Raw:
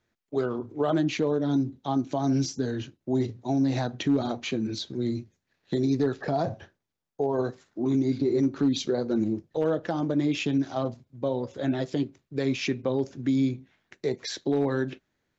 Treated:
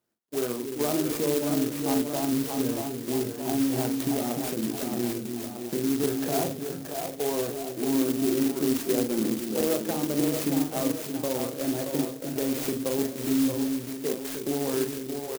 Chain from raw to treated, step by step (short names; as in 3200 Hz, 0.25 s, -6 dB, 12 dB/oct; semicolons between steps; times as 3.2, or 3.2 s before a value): HPF 170 Hz 12 dB/oct; in parallel at -2 dB: level quantiser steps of 19 dB; on the sum: high shelf 4500 Hz -6 dB; doubler 41 ms -6.5 dB; on a send: split-band echo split 400 Hz, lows 0.299 s, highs 0.626 s, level -4.5 dB; on the sum: clock jitter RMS 0.13 ms; gain -3.5 dB